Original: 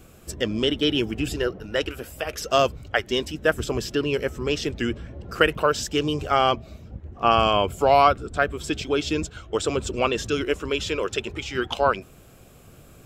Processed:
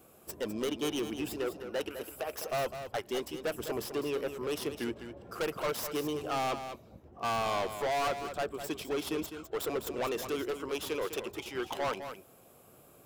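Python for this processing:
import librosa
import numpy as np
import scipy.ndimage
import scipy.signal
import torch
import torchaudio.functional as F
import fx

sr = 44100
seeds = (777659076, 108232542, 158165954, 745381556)

y = fx.tracing_dist(x, sr, depth_ms=0.092)
y = fx.highpass(y, sr, hz=620.0, slope=6)
y = fx.band_shelf(y, sr, hz=3300.0, db=-9.0, octaves=2.8)
y = np.clip(10.0 ** (27.5 / 20.0) * y, -1.0, 1.0) / 10.0 ** (27.5 / 20.0)
y = y + 10.0 ** (-9.5 / 20.0) * np.pad(y, (int(205 * sr / 1000.0), 0))[:len(y)]
y = y * librosa.db_to_amplitude(-1.5)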